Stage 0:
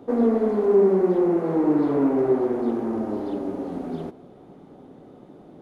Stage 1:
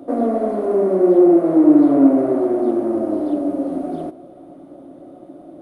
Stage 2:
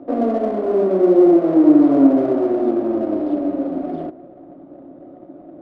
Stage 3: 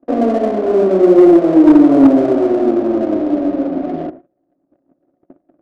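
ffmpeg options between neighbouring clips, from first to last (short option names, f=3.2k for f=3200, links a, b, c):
-af "superequalizer=6b=3.55:8b=3.98:10b=1.41:16b=3.55,volume=-1dB"
-af "adynamicsmooth=sensitivity=5:basefreq=1.6k"
-af "adynamicsmooth=sensitivity=6.5:basefreq=1.4k,agate=range=-30dB:threshold=-35dB:ratio=16:detection=peak,asoftclip=type=hard:threshold=-6dB,volume=4.5dB"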